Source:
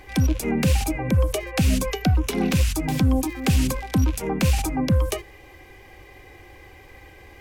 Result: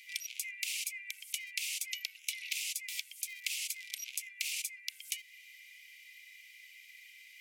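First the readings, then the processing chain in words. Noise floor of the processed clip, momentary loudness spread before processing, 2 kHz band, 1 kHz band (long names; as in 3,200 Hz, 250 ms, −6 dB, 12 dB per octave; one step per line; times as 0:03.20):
−57 dBFS, 2 LU, −7.0 dB, below −40 dB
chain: Chebyshev high-pass filter 2,100 Hz, order 6
downward compressor 1.5 to 1, threshold −42 dBFS, peak gain reduction 6.5 dB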